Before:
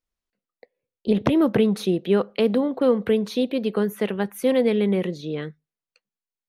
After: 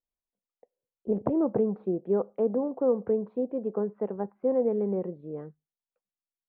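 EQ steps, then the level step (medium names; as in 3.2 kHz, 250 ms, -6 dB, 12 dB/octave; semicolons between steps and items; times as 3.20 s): dynamic bell 440 Hz, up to +4 dB, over -27 dBFS, Q 1; four-pole ladder low-pass 1.1 kHz, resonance 35%; -3.0 dB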